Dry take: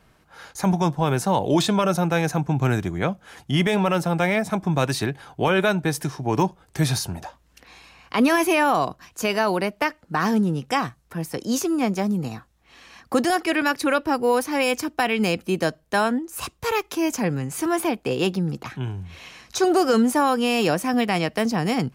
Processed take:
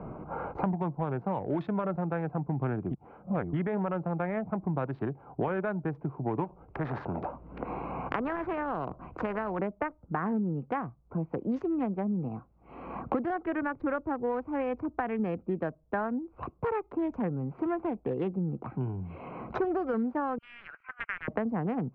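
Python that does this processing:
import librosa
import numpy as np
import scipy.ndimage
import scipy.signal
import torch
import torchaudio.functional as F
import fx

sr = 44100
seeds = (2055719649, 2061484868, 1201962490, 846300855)

y = fx.spectral_comp(x, sr, ratio=2.0, at=(6.44, 9.59))
y = fx.cheby1_highpass(y, sr, hz=1500.0, order=5, at=(20.38, 21.28))
y = fx.edit(y, sr, fx.reverse_span(start_s=2.91, length_s=0.62), tone=tone)
y = fx.wiener(y, sr, points=25)
y = scipy.signal.sosfilt(scipy.signal.butter(4, 1800.0, 'lowpass', fs=sr, output='sos'), y)
y = fx.band_squash(y, sr, depth_pct=100)
y = y * 10.0 ** (-9.0 / 20.0)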